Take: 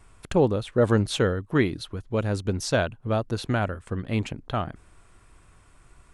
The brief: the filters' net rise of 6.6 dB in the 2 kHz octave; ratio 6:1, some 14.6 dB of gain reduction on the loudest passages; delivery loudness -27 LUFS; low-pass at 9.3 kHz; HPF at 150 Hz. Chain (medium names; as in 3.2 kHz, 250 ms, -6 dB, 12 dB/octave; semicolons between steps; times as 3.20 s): high-pass 150 Hz; low-pass 9.3 kHz; peaking EQ 2 kHz +9 dB; compression 6:1, threshold -31 dBFS; trim +9.5 dB